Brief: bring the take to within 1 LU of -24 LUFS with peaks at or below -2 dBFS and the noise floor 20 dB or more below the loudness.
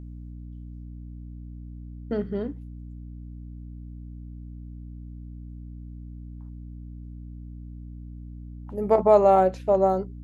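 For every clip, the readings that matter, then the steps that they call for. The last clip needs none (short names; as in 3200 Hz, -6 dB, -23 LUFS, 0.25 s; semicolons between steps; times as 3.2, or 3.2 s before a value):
hum 60 Hz; harmonics up to 300 Hz; hum level -37 dBFS; loudness -22.0 LUFS; peak -5.5 dBFS; loudness target -24.0 LUFS
-> notches 60/120/180/240/300 Hz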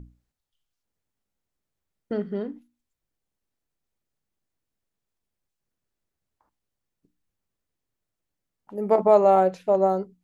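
hum none; loudness -21.5 LUFS; peak -6.0 dBFS; loudness target -24.0 LUFS
-> gain -2.5 dB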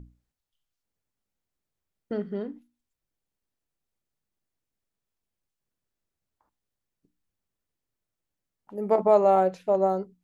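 loudness -23.5 LUFS; peak -8.5 dBFS; noise floor -86 dBFS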